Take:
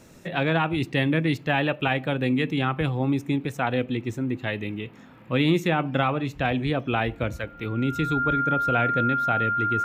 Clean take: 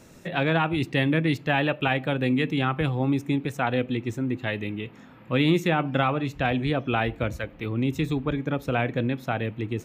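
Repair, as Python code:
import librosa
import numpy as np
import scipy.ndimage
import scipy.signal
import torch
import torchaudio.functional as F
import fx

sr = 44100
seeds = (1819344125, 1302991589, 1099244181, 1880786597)

y = fx.fix_declick_ar(x, sr, threshold=6.5)
y = fx.notch(y, sr, hz=1400.0, q=30.0)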